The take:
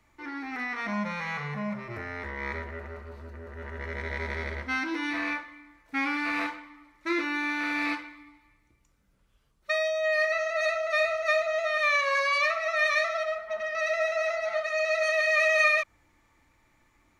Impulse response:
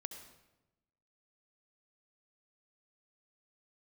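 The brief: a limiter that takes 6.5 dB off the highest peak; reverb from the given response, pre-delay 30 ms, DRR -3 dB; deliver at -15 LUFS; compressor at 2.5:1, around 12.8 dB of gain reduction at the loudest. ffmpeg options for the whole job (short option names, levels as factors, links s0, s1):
-filter_complex "[0:a]acompressor=threshold=0.0112:ratio=2.5,alimiter=level_in=2:limit=0.0631:level=0:latency=1,volume=0.501,asplit=2[s0][s1];[1:a]atrim=start_sample=2205,adelay=30[s2];[s1][s2]afir=irnorm=-1:irlink=0,volume=2[s3];[s0][s3]amix=inputs=2:normalize=0,volume=8.91"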